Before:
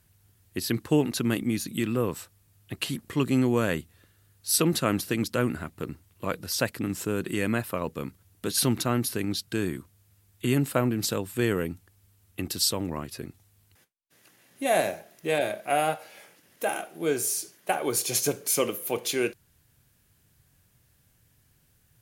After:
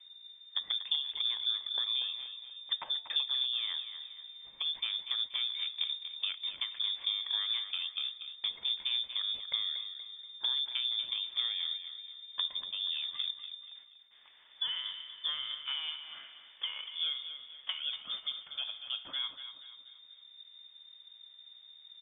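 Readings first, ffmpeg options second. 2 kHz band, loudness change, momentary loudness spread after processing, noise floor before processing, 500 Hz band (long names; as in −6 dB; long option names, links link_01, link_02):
−12.5 dB, −6.0 dB, 19 LU, −65 dBFS, below −35 dB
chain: -filter_complex "[0:a]acompressor=threshold=-35dB:ratio=12,aemphasis=mode=reproduction:type=bsi,bandreject=frequency=200.5:width_type=h:width=4,bandreject=frequency=401:width_type=h:width=4,bandreject=frequency=601.5:width_type=h:width=4,bandreject=frequency=802:width_type=h:width=4,bandreject=frequency=1002.5:width_type=h:width=4,bandreject=frequency=1203:width_type=h:width=4,bandreject=frequency=1403.5:width_type=h:width=4,bandreject=frequency=1604:width_type=h:width=4,bandreject=frequency=1804.5:width_type=h:width=4,bandreject=frequency=2005:width_type=h:width=4,bandreject=frequency=2205.5:width_type=h:width=4,bandreject=frequency=2406:width_type=h:width=4,bandreject=frequency=2606.5:width_type=h:width=4,bandreject=frequency=2807:width_type=h:width=4,bandreject=frequency=3007.5:width_type=h:width=4,bandreject=frequency=3208:width_type=h:width=4,bandreject=frequency=3408.5:width_type=h:width=4,bandreject=frequency=3609:width_type=h:width=4,bandreject=frequency=3809.5:width_type=h:width=4,bandreject=frequency=4010:width_type=h:width=4,bandreject=frequency=4210.5:width_type=h:width=4,bandreject=frequency=4411:width_type=h:width=4,bandreject=frequency=4611.5:width_type=h:width=4,bandreject=frequency=4812:width_type=h:width=4,bandreject=frequency=5012.5:width_type=h:width=4,bandreject=frequency=5213:width_type=h:width=4,bandreject=frequency=5413.5:width_type=h:width=4,bandreject=frequency=5614:width_type=h:width=4,bandreject=frequency=5814.5:width_type=h:width=4,bandreject=frequency=6015:width_type=h:width=4,bandreject=frequency=6215.5:width_type=h:width=4,bandreject=frequency=6416:width_type=h:width=4,bandreject=frequency=6616.5:width_type=h:width=4,bandreject=frequency=6817:width_type=h:width=4,bandreject=frequency=7017.5:width_type=h:width=4,asplit=2[link_01][link_02];[link_02]aecho=0:1:239|478|717|956:0.316|0.133|0.0558|0.0234[link_03];[link_01][link_03]amix=inputs=2:normalize=0,lowpass=frequency=3100:width_type=q:width=0.5098,lowpass=frequency=3100:width_type=q:width=0.6013,lowpass=frequency=3100:width_type=q:width=0.9,lowpass=frequency=3100:width_type=q:width=2.563,afreqshift=-3700"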